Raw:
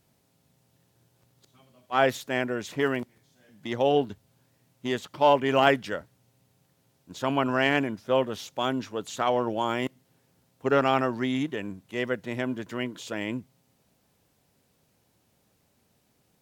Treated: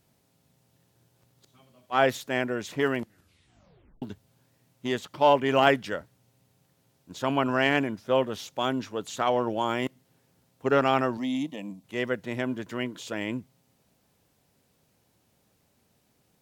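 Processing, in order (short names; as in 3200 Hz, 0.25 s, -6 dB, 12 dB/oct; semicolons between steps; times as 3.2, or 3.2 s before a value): 2.97 tape stop 1.05 s; 11.17–11.84 fixed phaser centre 400 Hz, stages 6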